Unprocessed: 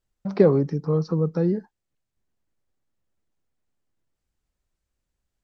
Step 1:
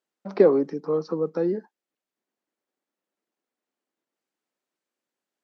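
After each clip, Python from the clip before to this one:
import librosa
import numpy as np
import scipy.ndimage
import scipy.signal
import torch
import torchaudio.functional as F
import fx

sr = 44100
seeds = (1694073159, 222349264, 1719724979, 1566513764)

y = scipy.signal.sosfilt(scipy.signal.butter(4, 250.0, 'highpass', fs=sr, output='sos'), x)
y = fx.high_shelf(y, sr, hz=5000.0, db=-7.0)
y = F.gain(torch.from_numpy(y), 1.0).numpy()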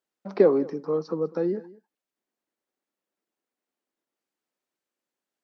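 y = x + 10.0 ** (-21.0 / 20.0) * np.pad(x, (int(199 * sr / 1000.0), 0))[:len(x)]
y = F.gain(torch.from_numpy(y), -1.5).numpy()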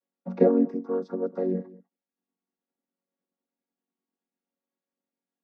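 y = fx.chord_vocoder(x, sr, chord='major triad', root=54)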